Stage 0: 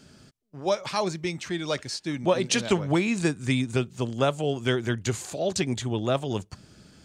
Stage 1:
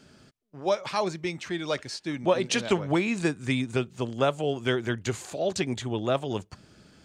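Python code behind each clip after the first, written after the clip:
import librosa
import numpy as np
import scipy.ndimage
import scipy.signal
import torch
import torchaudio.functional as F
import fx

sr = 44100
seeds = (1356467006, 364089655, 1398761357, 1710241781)

y = fx.bass_treble(x, sr, bass_db=-4, treble_db=-5)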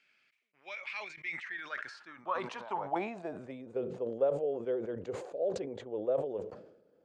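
y = fx.filter_sweep_bandpass(x, sr, from_hz=2300.0, to_hz=500.0, start_s=1.1, end_s=3.75, q=6.5)
y = fx.sustainer(y, sr, db_per_s=71.0)
y = y * 10.0 ** (2.0 / 20.0)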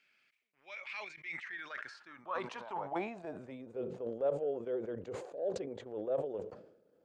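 y = fx.transient(x, sr, attack_db=-7, sustain_db=-3)
y = y * 10.0 ** (-1.0 / 20.0)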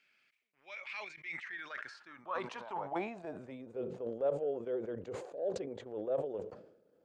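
y = x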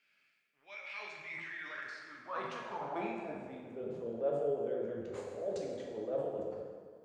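y = fx.rev_plate(x, sr, seeds[0], rt60_s=1.7, hf_ratio=0.75, predelay_ms=0, drr_db=-2.0)
y = y * 10.0 ** (-4.0 / 20.0)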